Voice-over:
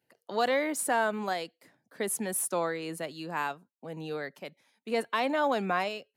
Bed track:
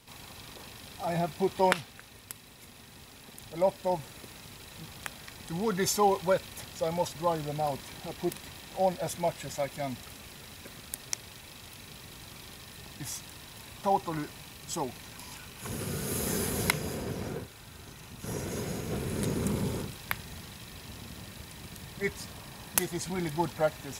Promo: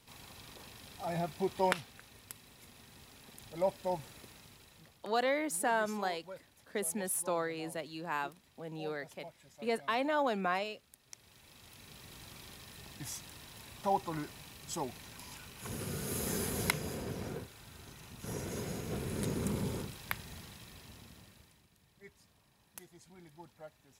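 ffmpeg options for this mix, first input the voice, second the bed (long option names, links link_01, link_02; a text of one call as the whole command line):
ffmpeg -i stem1.wav -i stem2.wav -filter_complex "[0:a]adelay=4750,volume=-4dB[link_01];[1:a]volume=11.5dB,afade=type=out:start_time=4.08:duration=0.97:silence=0.158489,afade=type=in:start_time=11.04:duration=1.13:silence=0.141254,afade=type=out:start_time=20.32:duration=1.35:silence=0.112202[link_02];[link_01][link_02]amix=inputs=2:normalize=0" out.wav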